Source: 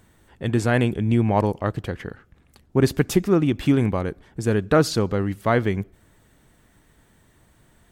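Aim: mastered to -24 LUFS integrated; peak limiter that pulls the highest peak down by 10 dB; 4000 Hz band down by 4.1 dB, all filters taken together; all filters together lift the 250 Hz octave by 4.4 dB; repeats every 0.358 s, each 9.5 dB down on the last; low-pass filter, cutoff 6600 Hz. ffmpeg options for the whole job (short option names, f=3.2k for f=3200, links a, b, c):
-af "lowpass=6.6k,equalizer=f=250:t=o:g=5.5,equalizer=f=4k:t=o:g=-4.5,alimiter=limit=-12.5dB:level=0:latency=1,aecho=1:1:358|716|1074|1432:0.335|0.111|0.0365|0.012,volume=-1dB"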